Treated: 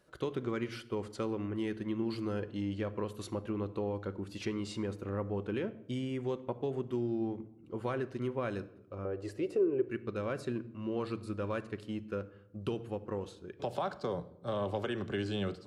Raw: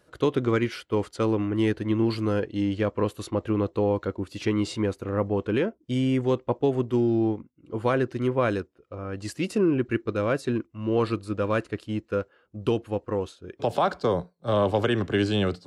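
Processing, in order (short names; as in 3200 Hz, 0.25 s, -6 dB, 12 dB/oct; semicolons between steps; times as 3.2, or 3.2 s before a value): 9.05–9.85 EQ curve 120 Hz 0 dB, 210 Hz -11 dB, 410 Hz +14 dB, 980 Hz 0 dB, 2300 Hz -3 dB, 5700 Hz -9 dB; compressor 2:1, threshold -30 dBFS, peak gain reduction 11.5 dB; on a send: reverb RT60 0.80 s, pre-delay 5 ms, DRR 11.5 dB; on the sum: gain -6 dB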